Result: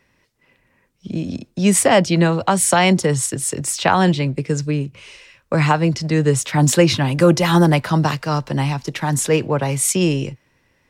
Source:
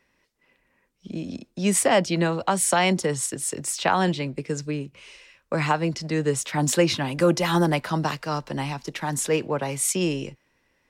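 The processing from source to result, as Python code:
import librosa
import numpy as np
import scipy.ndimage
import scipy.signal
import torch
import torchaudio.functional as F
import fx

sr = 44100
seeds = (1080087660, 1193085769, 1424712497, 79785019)

y = fx.peak_eq(x, sr, hz=110.0, db=9.5, octaves=1.0)
y = y * librosa.db_to_amplitude(5.5)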